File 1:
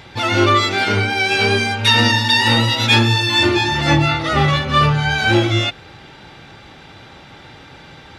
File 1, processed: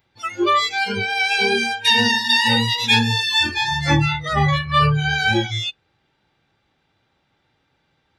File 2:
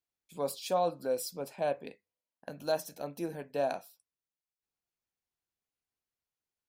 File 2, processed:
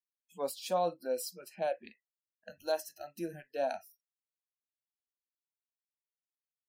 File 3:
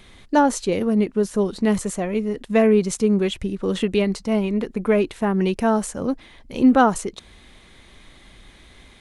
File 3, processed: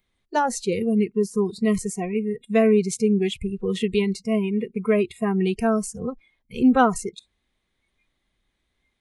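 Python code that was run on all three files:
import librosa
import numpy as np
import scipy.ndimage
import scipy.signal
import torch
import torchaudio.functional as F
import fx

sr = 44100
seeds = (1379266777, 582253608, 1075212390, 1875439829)

y = fx.noise_reduce_blind(x, sr, reduce_db=25)
y = y * librosa.db_to_amplitude(-1.5)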